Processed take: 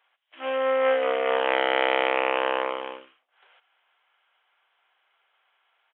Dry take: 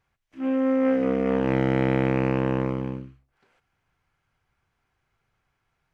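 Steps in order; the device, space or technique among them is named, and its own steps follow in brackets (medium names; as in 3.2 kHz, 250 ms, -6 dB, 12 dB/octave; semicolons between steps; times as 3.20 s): 1.87–2.36 s: band-stop 1.6 kHz, Q 10; musical greeting card (resampled via 8 kHz; high-pass 570 Hz 24 dB/octave; peaking EQ 3.1 kHz +8.5 dB 0.34 oct); trim +7.5 dB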